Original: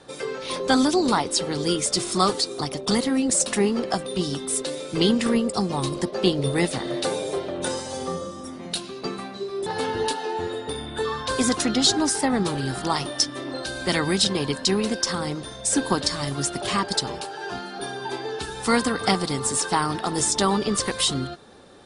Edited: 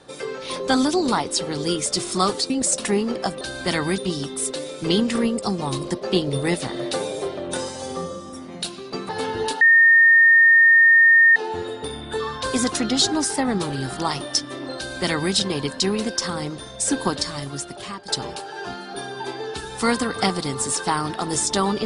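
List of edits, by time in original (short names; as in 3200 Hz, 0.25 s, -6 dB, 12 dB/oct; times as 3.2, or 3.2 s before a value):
2.5–3.18 cut
9.2–9.69 cut
10.21 add tone 1830 Hz -9.5 dBFS 1.75 s
13.62–14.19 copy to 4.09
15.91–16.93 fade out, to -14 dB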